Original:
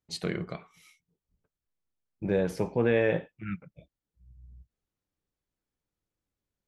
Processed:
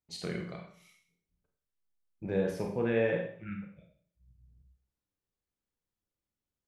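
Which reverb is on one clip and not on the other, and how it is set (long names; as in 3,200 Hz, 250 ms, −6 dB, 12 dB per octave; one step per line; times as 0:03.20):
four-comb reverb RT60 0.53 s, combs from 31 ms, DRR 2 dB
level −6.5 dB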